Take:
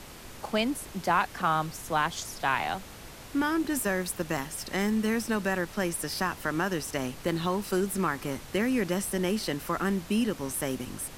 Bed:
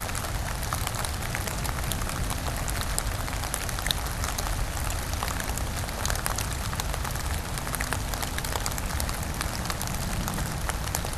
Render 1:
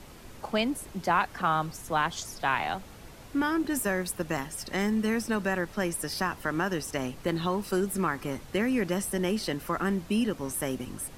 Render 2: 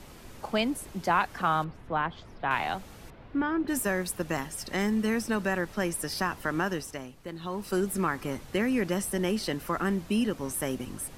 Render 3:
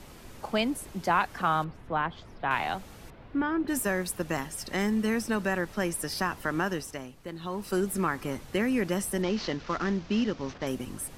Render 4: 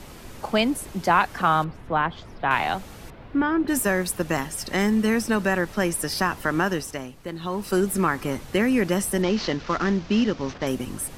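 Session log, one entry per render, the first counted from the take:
denoiser 6 dB, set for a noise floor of -46 dBFS
1.64–2.51 air absorption 430 m; 3.1–3.68 air absorption 370 m; 6.66–7.79 dip -10.5 dB, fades 0.40 s
9.22–10.67 CVSD 32 kbps
gain +6 dB

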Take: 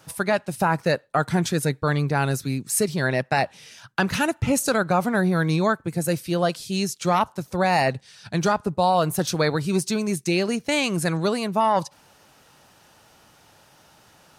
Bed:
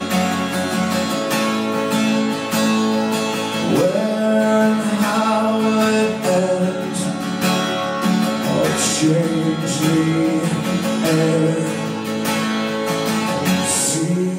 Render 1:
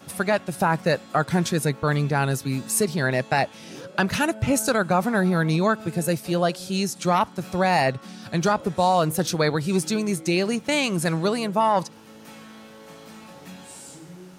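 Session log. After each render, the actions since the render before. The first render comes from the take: add bed -24.5 dB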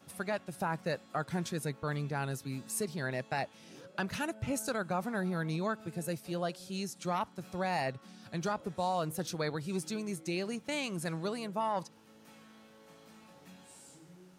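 gain -13 dB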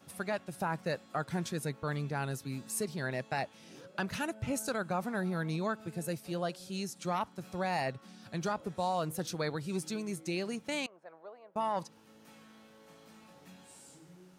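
10.86–11.56 ladder band-pass 780 Hz, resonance 40%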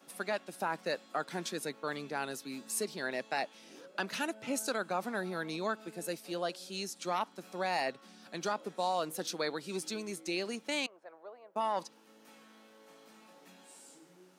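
HPF 230 Hz 24 dB/oct; dynamic EQ 4000 Hz, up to +4 dB, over -54 dBFS, Q 0.89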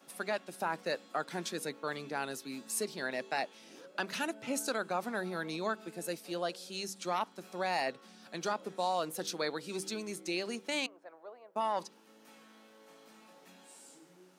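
de-hum 96.58 Hz, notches 5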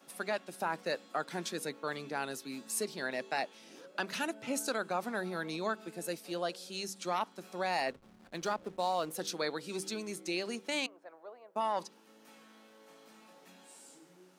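7.88–9.13 backlash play -47 dBFS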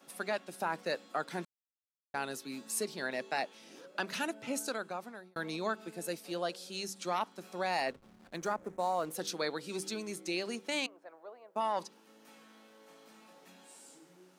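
1.45–2.14 mute; 4.16–5.36 fade out equal-power; 8.36–9.05 band shelf 3700 Hz -9.5 dB 1.2 oct

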